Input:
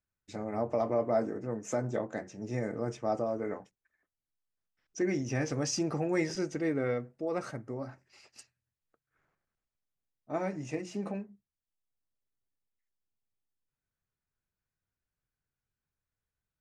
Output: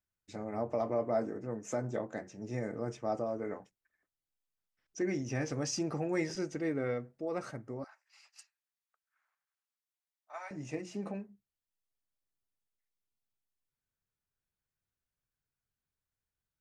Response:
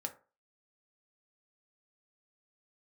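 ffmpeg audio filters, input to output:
-filter_complex "[0:a]asettb=1/sr,asplit=3[a][b][c];[a]atrim=end=7.844[d];[b]atrim=start=7.84:end=10.51,asetpts=PTS-STARTPTS,afade=t=in:d=0.004:c=qsin,afade=t=out:st=2.666:d=0.004:c=qsin,highpass=f=850:w=0.5412,highpass=f=850:w=1.3066[e];[c]atrim=start=10.506[f];[d][e]acrossfade=d=0.004:c1=hsin:c2=qsin[g];[g][f]acrossfade=d=0.004:c1=qsin:c2=hsin,volume=-3dB"

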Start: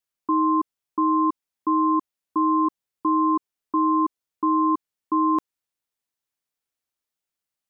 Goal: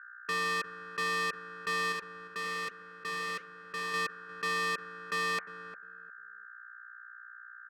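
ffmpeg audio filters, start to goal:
-filter_complex "[0:a]equalizer=f=74:w=1.3:g=11.5,bandreject=f=990:w=7.7,bandreject=f=73.38:t=h:w=4,bandreject=f=146.76:t=h:w=4,bandreject=f=220.14:t=h:w=4,bandreject=f=293.52:t=h:w=4,bandreject=f=366.9:t=h:w=4,bandreject=f=440.28:t=h:w=4,bandreject=f=513.66:t=h:w=4,bandreject=f=587.04:t=h:w=4,bandreject=f=660.42:t=h:w=4,bandreject=f=733.8:t=h:w=4,bandreject=f=807.18:t=h:w=4,adynamicsmooth=sensitivity=5.5:basefreq=610,aeval=exprs='val(0)+0.00631*(sin(2*PI*60*n/s)+sin(2*PI*2*60*n/s)/2+sin(2*PI*3*60*n/s)/3+sin(2*PI*4*60*n/s)/4+sin(2*PI*5*60*n/s)/5)':c=same,aeval=exprs='val(0)*sin(2*PI*1500*n/s)':c=same,asoftclip=type=hard:threshold=-27.5dB,asettb=1/sr,asplit=3[a][b][c];[a]atrim=end=1.924[d];[b]atrim=start=1.92:end=3.94,asetpts=PTS-STARTPTS,afade=t=in:d=0.004:c=qsin,afade=t=out:st=2.016:d=0.004:c=qsin,flanger=delay=0.7:depth=9.5:regen=-86:speed=1.2:shape=triangular[e];[c]atrim=start=3.936[f];[d][e]acrossfade=d=0.004:c1=hsin:c2=qsin[g];[g][f]acrossfade=d=0.004:c1=qsin:c2=hsin,asplit=2[h][i];[i]adelay=353,lowpass=f=890:p=1,volume=-11dB,asplit=2[j][k];[k]adelay=353,lowpass=f=890:p=1,volume=0.23,asplit=2[l][m];[m]adelay=353,lowpass=f=890:p=1,volume=0.23[n];[h][j][l][n]amix=inputs=4:normalize=0,volume=-1.5dB"

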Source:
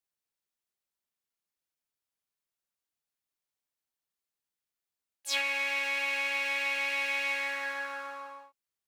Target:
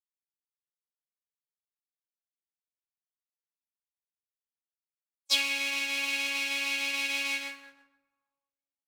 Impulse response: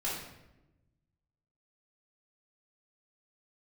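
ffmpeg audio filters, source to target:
-filter_complex "[0:a]equalizer=f=1.8k:t=o:w=0.36:g=-8,agate=range=-52dB:threshold=-33dB:ratio=16:detection=peak,acrossover=split=290|3000[a][b][c];[b]acompressor=threshold=-54dB:ratio=2[d];[a][d][c]amix=inputs=3:normalize=0,asplit=2[e][f];[1:a]atrim=start_sample=2205[g];[f][g]afir=irnorm=-1:irlink=0,volume=-12.5dB[h];[e][h]amix=inputs=2:normalize=0,volume=8dB"

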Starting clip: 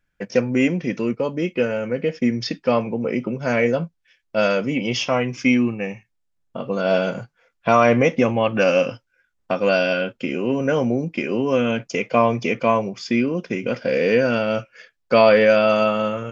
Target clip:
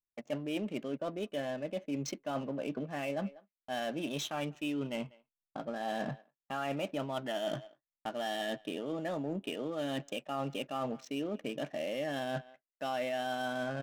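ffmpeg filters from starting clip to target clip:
-filter_complex "[0:a]agate=range=-23dB:threshold=-40dB:ratio=16:detection=peak,adynamicsmooth=sensitivity=6.5:basefreq=780,asplit=2[a][b];[b]adelay=230,highpass=300,lowpass=3.4k,asoftclip=type=hard:threshold=-12dB,volume=-29dB[c];[a][c]amix=inputs=2:normalize=0,asetrate=52038,aresample=44100,areverse,acompressor=threshold=-30dB:ratio=6,areverse,volume=-4dB"

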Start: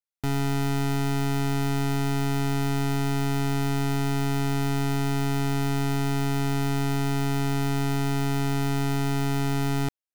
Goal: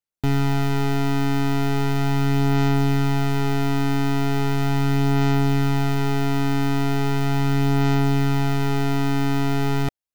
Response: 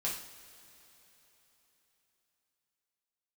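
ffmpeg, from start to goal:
-filter_complex "[0:a]aphaser=in_gain=1:out_gain=1:delay=3.3:decay=0.26:speed=0.38:type=sinusoidal,asplit=2[a][b];[b]adynamicsmooth=sensitivity=7.5:basefreq=840,volume=-4dB[c];[a][c]amix=inputs=2:normalize=0"

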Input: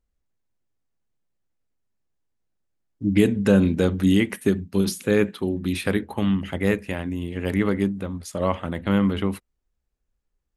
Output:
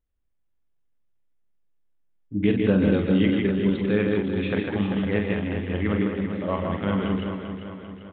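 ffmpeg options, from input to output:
-filter_complex "[0:a]aresample=8000,aresample=44100,asplit=2[a][b];[b]aecho=0:1:58.31|166.2|201.2|268.2:0.501|0.282|0.631|0.398[c];[a][c]amix=inputs=2:normalize=0,atempo=1.3,asplit=2[d][e];[e]aecho=0:1:394|788|1182|1576|1970|2364:0.376|0.195|0.102|0.0528|0.0275|0.0143[f];[d][f]amix=inputs=2:normalize=0,volume=-4dB"

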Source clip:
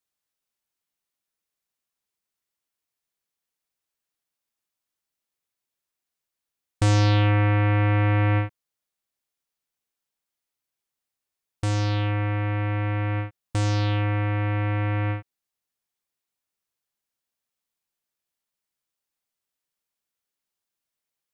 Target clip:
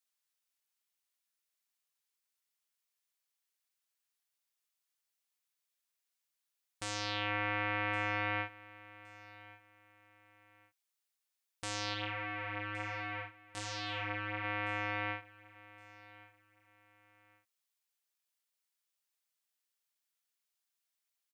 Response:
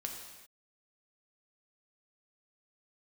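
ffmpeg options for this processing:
-filter_complex "[0:a]highpass=f=1.5k:p=1,alimiter=limit=-20.5dB:level=0:latency=1:release=39,asplit=3[a][b][c];[a]afade=t=out:st=11.93:d=0.02[d];[b]flanger=delay=16.5:depth=3.5:speed=1.3,afade=t=in:st=11.93:d=0.02,afade=t=out:st=14.43:d=0.02[e];[c]afade=t=in:st=14.43:d=0.02[f];[d][e][f]amix=inputs=3:normalize=0,aecho=1:1:1116|2232:0.1|0.029"

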